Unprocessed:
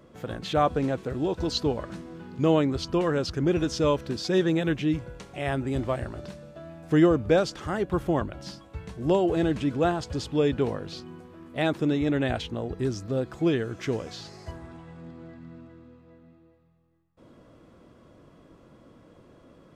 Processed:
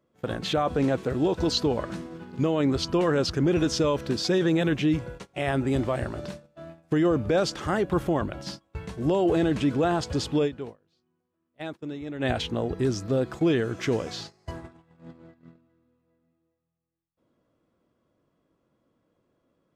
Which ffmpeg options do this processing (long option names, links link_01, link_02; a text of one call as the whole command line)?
ffmpeg -i in.wav -filter_complex "[0:a]asplit=3[link_01][link_02][link_03];[link_01]atrim=end=10.5,asetpts=PTS-STARTPTS,afade=type=out:start_time=10.38:duration=0.12:silence=0.188365[link_04];[link_02]atrim=start=10.5:end=12.18,asetpts=PTS-STARTPTS,volume=-14.5dB[link_05];[link_03]atrim=start=12.18,asetpts=PTS-STARTPTS,afade=type=in:duration=0.12:silence=0.188365[link_06];[link_04][link_05][link_06]concat=n=3:v=0:a=1,agate=range=-22dB:threshold=-41dB:ratio=16:detection=peak,lowshelf=frequency=78:gain=-6.5,alimiter=limit=-20dB:level=0:latency=1:release=15,volume=4.5dB" out.wav